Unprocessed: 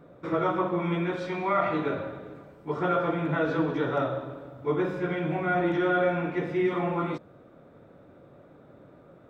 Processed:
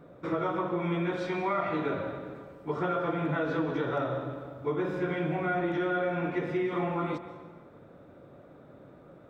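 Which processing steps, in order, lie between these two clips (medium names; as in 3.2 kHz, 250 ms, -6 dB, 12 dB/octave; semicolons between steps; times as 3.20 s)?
compression, threshold -26 dBFS, peak gain reduction 6.5 dB; plate-style reverb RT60 1.5 s, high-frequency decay 0.75×, pre-delay 115 ms, DRR 12 dB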